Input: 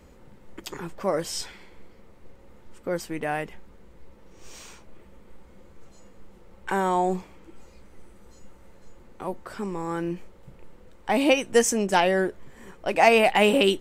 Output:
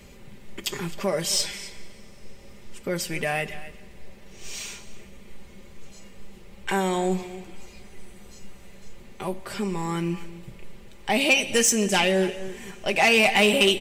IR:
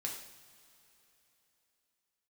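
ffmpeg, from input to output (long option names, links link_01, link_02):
-filter_complex "[0:a]equalizer=frequency=110:width_type=o:width=0.38:gain=13.5,aecho=1:1:5:0.54,aecho=1:1:262:0.119,asplit=2[link_01][link_02];[link_02]acompressor=threshold=-29dB:ratio=6,volume=-2dB[link_03];[link_01][link_03]amix=inputs=2:normalize=0,highshelf=frequency=1800:width_type=q:width=1.5:gain=7,asplit=2[link_04][link_05];[1:a]atrim=start_sample=2205,asetrate=28224,aresample=44100[link_06];[link_05][link_06]afir=irnorm=-1:irlink=0,volume=-14.5dB[link_07];[link_04][link_07]amix=inputs=2:normalize=0,asoftclip=type=tanh:threshold=-7dB,volume=-4.5dB"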